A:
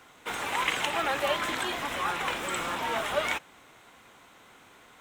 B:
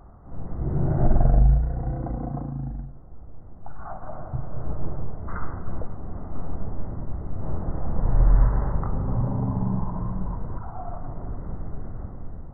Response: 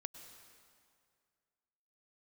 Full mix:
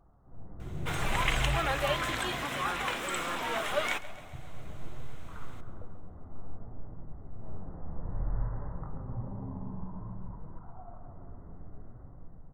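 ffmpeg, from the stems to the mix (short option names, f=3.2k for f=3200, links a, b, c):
-filter_complex "[0:a]bandreject=f=890:w=14,adelay=600,volume=-2dB,asplit=2[a][b];[b]volume=-18dB[c];[1:a]flanger=delay=5.8:depth=6.7:regen=58:speed=0.57:shape=triangular,volume=-12.5dB,asplit=3[d][e][f];[e]volume=-4.5dB[g];[f]volume=-7dB[h];[2:a]atrim=start_sample=2205[i];[g][i]afir=irnorm=-1:irlink=0[j];[c][h]amix=inputs=2:normalize=0,aecho=0:1:136|272|408|544|680|816|952|1088|1224:1|0.59|0.348|0.205|0.121|0.0715|0.0422|0.0249|0.0147[k];[a][d][j][k]amix=inputs=4:normalize=0"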